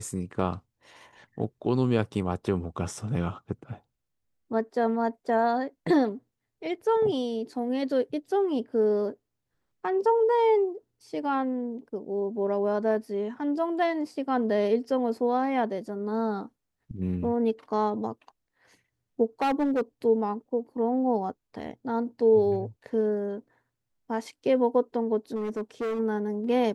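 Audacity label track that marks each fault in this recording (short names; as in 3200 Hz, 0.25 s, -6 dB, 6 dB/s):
19.410000	19.810000	clipped -21.5 dBFS
25.350000	26.000000	clipped -27 dBFS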